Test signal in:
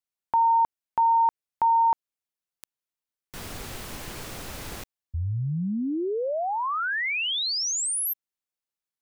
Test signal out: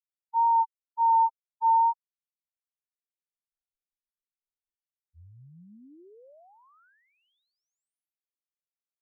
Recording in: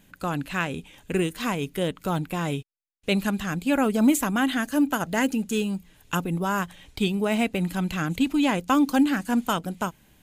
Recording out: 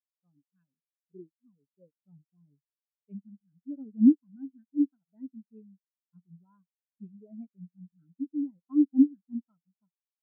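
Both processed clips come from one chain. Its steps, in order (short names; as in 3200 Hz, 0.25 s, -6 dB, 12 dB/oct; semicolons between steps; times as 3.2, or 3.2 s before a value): wow and flutter 20 cents; spectral expander 4:1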